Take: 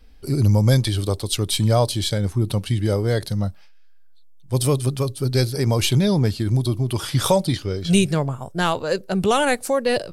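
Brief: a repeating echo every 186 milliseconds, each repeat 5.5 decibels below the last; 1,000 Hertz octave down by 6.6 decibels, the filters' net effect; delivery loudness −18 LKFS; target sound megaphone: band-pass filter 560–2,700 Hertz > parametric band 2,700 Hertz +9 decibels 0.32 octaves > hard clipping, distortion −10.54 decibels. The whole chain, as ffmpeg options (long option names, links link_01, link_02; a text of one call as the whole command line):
ffmpeg -i in.wav -af "highpass=560,lowpass=2700,equalizer=frequency=1000:width_type=o:gain=-8,equalizer=frequency=2700:width_type=o:width=0.32:gain=9,aecho=1:1:186|372|558|744|930|1116|1302:0.531|0.281|0.149|0.079|0.0419|0.0222|0.0118,asoftclip=type=hard:threshold=-23dB,volume=12dB" out.wav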